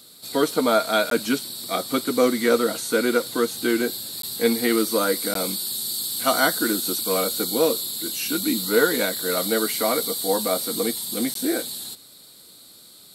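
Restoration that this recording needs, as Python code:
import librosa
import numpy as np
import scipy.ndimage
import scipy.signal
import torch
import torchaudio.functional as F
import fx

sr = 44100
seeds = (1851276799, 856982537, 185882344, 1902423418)

y = fx.fix_interpolate(x, sr, at_s=(1.1, 4.22, 5.34, 11.34), length_ms=13.0)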